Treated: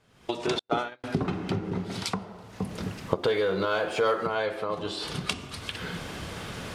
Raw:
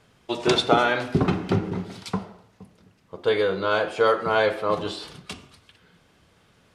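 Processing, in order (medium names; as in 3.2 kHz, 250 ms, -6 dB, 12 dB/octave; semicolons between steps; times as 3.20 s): recorder AGC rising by 52 dB/s; 0.59–1.04 s: gate -18 dBFS, range -51 dB; 3.23–4.27 s: waveshaping leveller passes 1; trim -8 dB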